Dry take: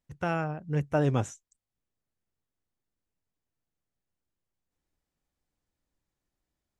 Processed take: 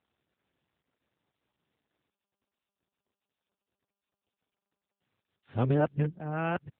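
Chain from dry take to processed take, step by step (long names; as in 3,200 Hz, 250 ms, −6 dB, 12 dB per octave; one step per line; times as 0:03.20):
played backwards from end to start
AMR narrowband 10.2 kbit/s 8,000 Hz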